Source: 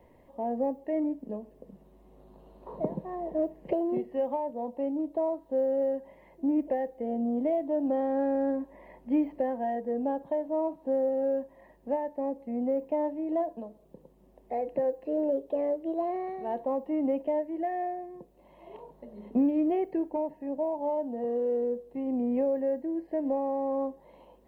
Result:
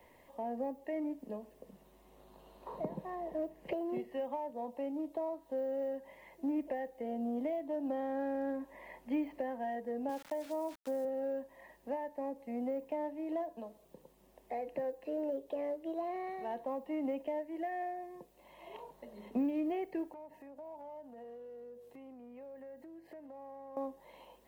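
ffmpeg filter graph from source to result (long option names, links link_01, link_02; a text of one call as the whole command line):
ffmpeg -i in.wav -filter_complex "[0:a]asettb=1/sr,asplit=3[link_01][link_02][link_03];[link_01]atrim=end=10.094[link_04];[link_02]atrim=start=10.09:end=11.05,asetpts=PTS-STARTPTS,afade=type=in:duration=0.004:curve=qsin,afade=type=out:start_time=0.956:duration=0.004:curve=qsin,highpass=110,aeval=exprs='val(0)*gte(abs(val(0)),0.00447)':channel_layout=same[link_05];[link_03]atrim=start=11.046[link_06];[link_04][link_05]acrossfade=duration=0.004:curve1=hsin:curve2=qsin[link_07];[link_07][link_06]acrossfade=duration=0.004:curve1=qsin:curve2=hsin,asettb=1/sr,asplit=3[link_08][link_09][link_10];[link_08]atrim=end=20.124[link_11];[link_09]atrim=start=20.12:end=23.77,asetpts=PTS-STARTPTS,afade=type=in:duration=0.004:curve=qsin,afade=type=out:start_time=3.646:duration=0.004:curve=qsin,acompressor=threshold=-42dB:ratio=16:attack=3.2:release=140:knee=1:detection=peak,aeval=exprs='val(0)+0.000891*(sin(2*PI*50*n/s)+sin(2*PI*2*50*n/s)/2+sin(2*PI*3*50*n/s)/3+sin(2*PI*4*50*n/s)/4+sin(2*PI*5*50*n/s)/5)':channel_layout=same,highpass=frequency=170:poles=1[link_12];[link_10]atrim=start=23.766[link_13];[link_11][link_12]acrossfade=duration=0.004:curve1=hsin:curve2=qsin[link_14];[link_14][link_13]acrossfade=duration=0.004:curve1=qsin:curve2=hsin,tiltshelf=frequency=870:gain=-8,acrossover=split=290[link_15][link_16];[link_16]acompressor=threshold=-41dB:ratio=2[link_17];[link_15][link_17]amix=inputs=2:normalize=0" out.wav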